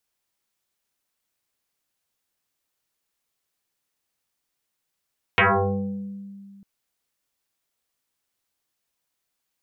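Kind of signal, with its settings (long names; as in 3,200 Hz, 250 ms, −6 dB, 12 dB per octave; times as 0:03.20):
two-operator FM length 1.25 s, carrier 198 Hz, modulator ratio 1.49, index 9.6, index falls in 1.12 s exponential, decay 2.29 s, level −13 dB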